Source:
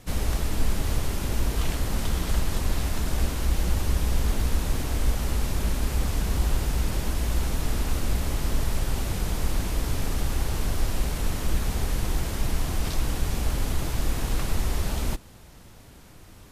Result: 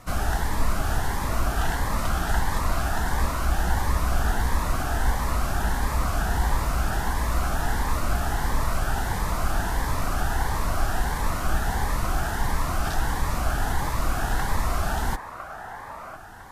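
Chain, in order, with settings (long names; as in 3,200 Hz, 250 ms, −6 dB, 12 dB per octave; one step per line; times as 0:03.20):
flat-topped bell 1,100 Hz +13 dB
delay with a band-pass on its return 1,006 ms, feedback 36%, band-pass 1,000 Hz, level −7 dB
phaser whose notches keep moving one way rising 1.5 Hz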